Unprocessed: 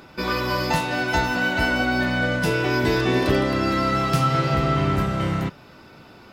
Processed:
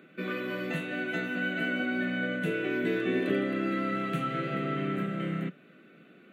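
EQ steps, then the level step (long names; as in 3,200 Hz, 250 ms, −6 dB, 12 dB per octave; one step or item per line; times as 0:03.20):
Chebyshev high-pass filter 170 Hz, order 4
low-pass filter 3,000 Hz 6 dB per octave
phaser with its sweep stopped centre 2,200 Hz, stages 4
−4.5 dB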